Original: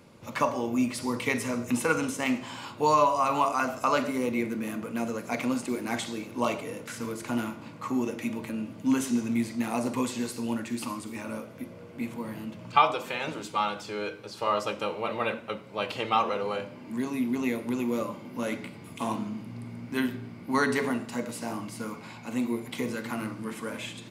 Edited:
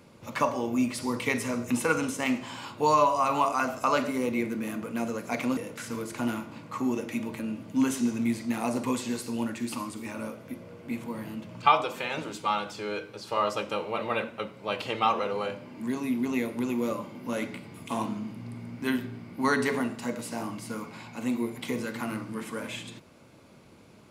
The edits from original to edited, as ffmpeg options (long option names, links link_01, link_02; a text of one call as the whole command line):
ffmpeg -i in.wav -filter_complex "[0:a]asplit=2[link_01][link_02];[link_01]atrim=end=5.572[link_03];[link_02]atrim=start=6.668[link_04];[link_03][link_04]acrossfade=duration=0.004:curve1=hsin:curve2=hsin" out.wav